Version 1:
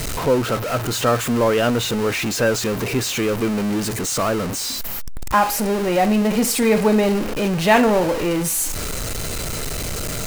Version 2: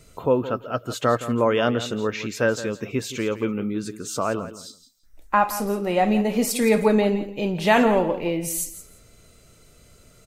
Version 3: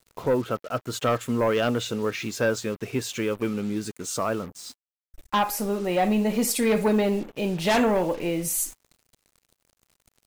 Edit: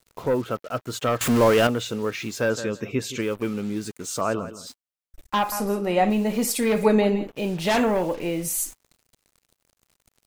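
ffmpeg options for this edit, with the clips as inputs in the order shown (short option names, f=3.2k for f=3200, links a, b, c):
-filter_complex "[1:a]asplit=4[a][b][c][d];[2:a]asplit=6[e][f][g][h][i][j];[e]atrim=end=1.212[k];[0:a]atrim=start=1.208:end=1.672[l];[f]atrim=start=1.668:end=2.502[m];[a]atrim=start=2.498:end=3.212[n];[g]atrim=start=3.208:end=4.212[o];[b]atrim=start=4.208:end=4.672[p];[h]atrim=start=4.668:end=5.522[q];[c]atrim=start=5.518:end=6.102[r];[i]atrim=start=6.098:end=6.832[s];[d]atrim=start=6.828:end=7.272[t];[j]atrim=start=7.268[u];[k][l]acrossfade=d=0.004:c1=hsin:c2=hsin[v];[v][m]acrossfade=d=0.004:c1=hsin:c2=hsin[w];[w][n]acrossfade=d=0.004:c1=hsin:c2=hsin[x];[x][o]acrossfade=d=0.004:c1=hsin:c2=hsin[y];[y][p]acrossfade=d=0.004:c1=hsin:c2=hsin[z];[z][q]acrossfade=d=0.004:c1=hsin:c2=hsin[aa];[aa][r]acrossfade=d=0.004:c1=hsin:c2=hsin[ab];[ab][s]acrossfade=d=0.004:c1=hsin:c2=hsin[ac];[ac][t]acrossfade=d=0.004:c1=hsin:c2=hsin[ad];[ad][u]acrossfade=d=0.004:c1=hsin:c2=hsin"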